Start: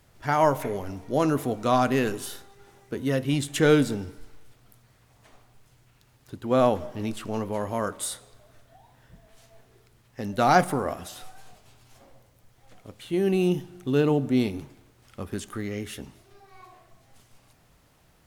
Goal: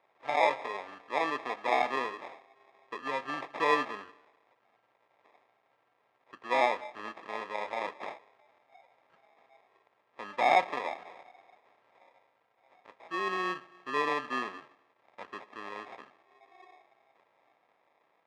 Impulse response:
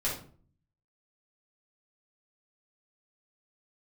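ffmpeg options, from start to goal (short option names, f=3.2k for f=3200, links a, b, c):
-af "acrusher=samples=30:mix=1:aa=0.000001,highpass=780,lowpass=2.2k"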